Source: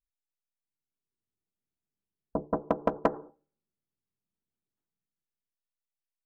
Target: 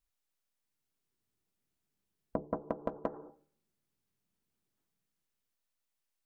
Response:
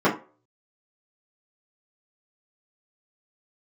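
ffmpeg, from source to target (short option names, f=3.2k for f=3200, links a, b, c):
-filter_complex "[0:a]acrossover=split=1100[a][b];[b]alimiter=level_in=5dB:limit=-24dB:level=0:latency=1:release=25,volume=-5dB[c];[a][c]amix=inputs=2:normalize=0,acompressor=threshold=-38dB:ratio=10,volume=6.5dB"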